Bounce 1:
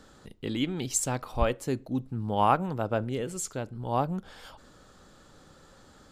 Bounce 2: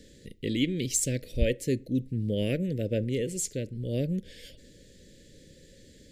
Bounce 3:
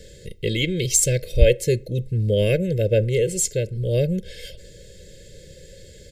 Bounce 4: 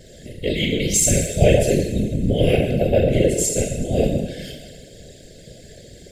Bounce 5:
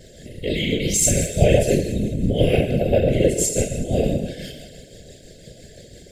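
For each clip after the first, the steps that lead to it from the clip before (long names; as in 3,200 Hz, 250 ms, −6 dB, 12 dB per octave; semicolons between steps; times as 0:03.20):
de-essing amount 40%; elliptic band-stop filter 530–1,900 Hz, stop band 40 dB; level +3 dB
comb filter 1.9 ms, depth 93%; level +6.5 dB
coupled-rooms reverb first 0.98 s, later 3.1 s, DRR −3 dB; random phases in short frames; level −3 dB
shaped tremolo triangle 5.9 Hz, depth 40%; level +1 dB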